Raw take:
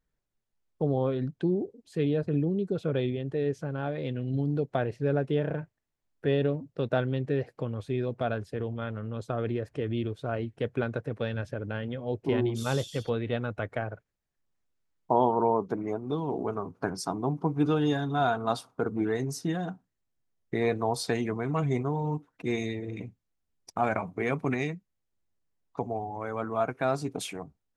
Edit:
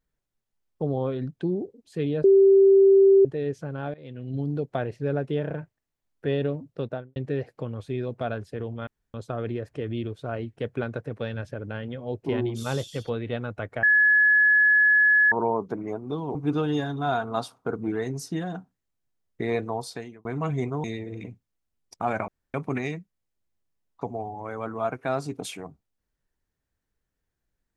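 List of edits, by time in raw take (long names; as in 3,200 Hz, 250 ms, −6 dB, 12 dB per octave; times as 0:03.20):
0:02.24–0:03.25: beep over 390 Hz −12 dBFS
0:03.94–0:04.42: fade in linear, from −18 dB
0:06.75–0:07.16: fade out and dull
0:08.87–0:09.14: fill with room tone
0:13.83–0:15.32: beep over 1,700 Hz −15 dBFS
0:16.35–0:17.48: remove
0:20.72–0:21.38: fade out
0:21.97–0:22.60: remove
0:24.04–0:24.30: fill with room tone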